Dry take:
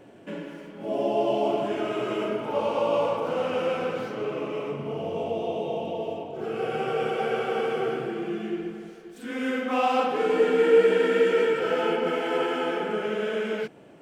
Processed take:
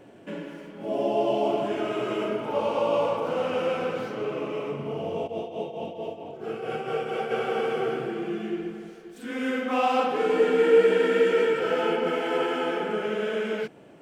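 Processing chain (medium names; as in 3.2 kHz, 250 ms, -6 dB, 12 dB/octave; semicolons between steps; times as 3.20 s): 5.26–7.30 s: tremolo triangle 4.5 Hz, depth 85% -> 50%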